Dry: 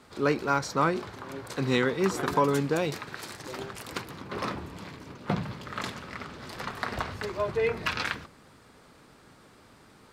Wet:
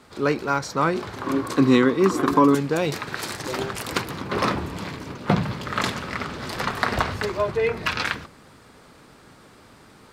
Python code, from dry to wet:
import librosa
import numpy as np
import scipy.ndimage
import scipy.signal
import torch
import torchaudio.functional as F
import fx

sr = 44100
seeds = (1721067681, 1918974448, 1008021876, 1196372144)

y = fx.rider(x, sr, range_db=4, speed_s=0.5)
y = fx.small_body(y, sr, hz=(290.0, 1100.0), ring_ms=30, db=12, at=(1.26, 2.55))
y = y * librosa.db_to_amplitude(6.0)